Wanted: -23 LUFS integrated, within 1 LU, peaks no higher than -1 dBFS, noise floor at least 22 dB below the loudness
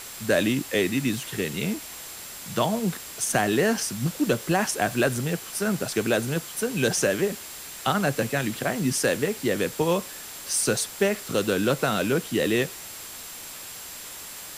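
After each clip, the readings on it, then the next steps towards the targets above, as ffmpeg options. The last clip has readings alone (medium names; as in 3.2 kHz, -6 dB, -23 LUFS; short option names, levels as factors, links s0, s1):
steady tone 7.5 kHz; tone level -46 dBFS; noise floor -40 dBFS; noise floor target -48 dBFS; loudness -25.5 LUFS; peak level -9.0 dBFS; loudness target -23.0 LUFS
-> -af "bandreject=f=7500:w=30"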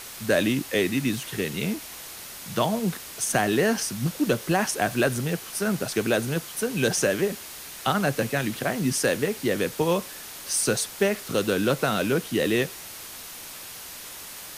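steady tone not found; noise floor -40 dBFS; noise floor target -48 dBFS
-> -af "afftdn=nr=8:nf=-40"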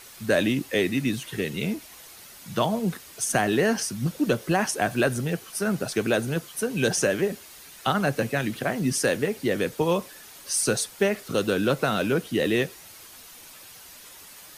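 noise floor -47 dBFS; noise floor target -48 dBFS
-> -af "afftdn=nr=6:nf=-47"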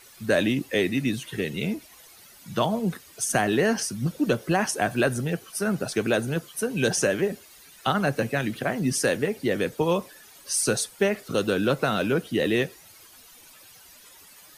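noise floor -51 dBFS; loudness -25.5 LUFS; peak level -9.0 dBFS; loudness target -23.0 LUFS
-> -af "volume=1.33"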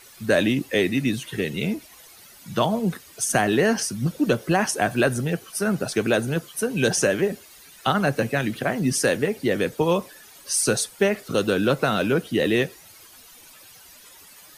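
loudness -23.0 LUFS; peak level -6.5 dBFS; noise floor -48 dBFS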